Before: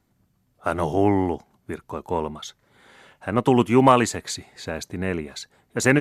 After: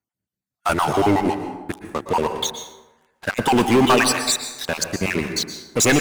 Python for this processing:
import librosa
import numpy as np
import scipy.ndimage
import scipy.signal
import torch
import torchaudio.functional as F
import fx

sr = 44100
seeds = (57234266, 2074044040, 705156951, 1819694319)

y = fx.spec_dropout(x, sr, seeds[0], share_pct=35)
y = scipy.signal.sosfilt(scipy.signal.butter(2, 73.0, 'highpass', fs=sr, output='sos'), y)
y = fx.tilt_shelf(y, sr, db=-4.0, hz=1300.0)
y = fx.leveller(y, sr, passes=5)
y = fx.rev_plate(y, sr, seeds[1], rt60_s=1.1, hf_ratio=0.5, predelay_ms=105, drr_db=7.0)
y = y * librosa.db_to_amplitude(-7.5)